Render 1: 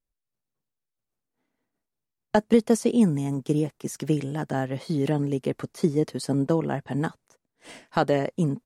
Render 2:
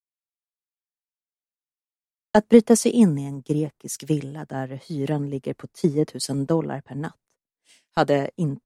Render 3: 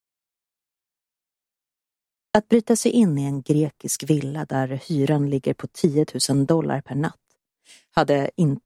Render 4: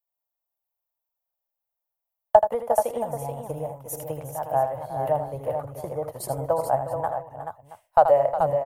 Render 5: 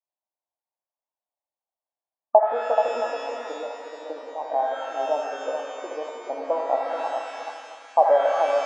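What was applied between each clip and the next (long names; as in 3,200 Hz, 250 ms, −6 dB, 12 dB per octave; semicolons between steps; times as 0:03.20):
multiband upward and downward expander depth 100%; level +1 dB
downward compressor 6 to 1, threshold −20 dBFS, peak gain reduction 13 dB; level +6.5 dB
drawn EQ curve 110 Hz 0 dB, 190 Hz −25 dB, 390 Hz −19 dB, 580 Hz +7 dB, 880 Hz +6 dB, 1,600 Hz −10 dB, 4,800 Hz −22 dB, 8,400 Hz −13 dB, 14,000 Hz +7 dB; on a send: multi-tap delay 80/361/431/675 ms −9/−12.5/−7/−17.5 dB; on the sum: level −1.5 dB
linear-phase brick-wall band-pass 240–1,200 Hz; reverb with rising layers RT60 2.1 s, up +12 semitones, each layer −8 dB, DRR 4.5 dB; level −1.5 dB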